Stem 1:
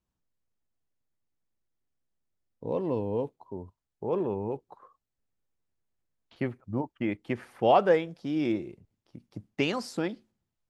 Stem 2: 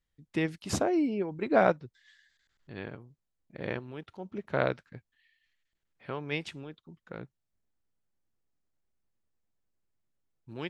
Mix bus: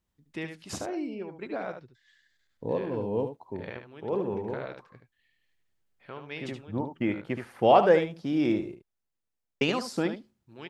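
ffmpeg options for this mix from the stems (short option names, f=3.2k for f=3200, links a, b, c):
-filter_complex "[0:a]volume=2dB,asplit=3[a][b][c];[a]atrim=end=8.75,asetpts=PTS-STARTPTS,afade=t=out:st=8.746:d=0.004:c=hsin[d];[b]atrim=start=8.75:end=9.61,asetpts=PTS-STARTPTS,volume=0[e];[c]atrim=start=9.61,asetpts=PTS-STARTPTS,afade=t=in:d=0.004:c=hsin[f];[d][e][f]concat=n=3:v=0:a=1,asplit=2[g][h];[h]volume=-10dB[i];[1:a]lowshelf=f=390:g=-5.5,alimiter=limit=-20dB:level=0:latency=1:release=46,volume=-3.5dB,asplit=3[j][k][l];[k]volume=-7.5dB[m];[l]apad=whole_len=471741[n];[g][n]sidechaincompress=threshold=-44dB:ratio=8:attack=16:release=595[o];[i][m]amix=inputs=2:normalize=0,aecho=0:1:74:1[p];[o][j][p]amix=inputs=3:normalize=0"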